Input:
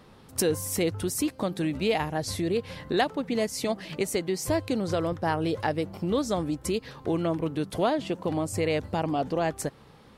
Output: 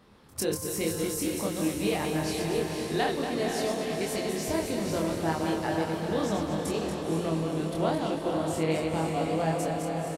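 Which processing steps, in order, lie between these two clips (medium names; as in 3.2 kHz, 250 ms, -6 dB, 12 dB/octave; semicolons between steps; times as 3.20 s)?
backward echo that repeats 117 ms, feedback 62%, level -4.5 dB; doubling 25 ms -2 dB; echo that smears into a reverb 500 ms, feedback 59%, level -5 dB; trim -6.5 dB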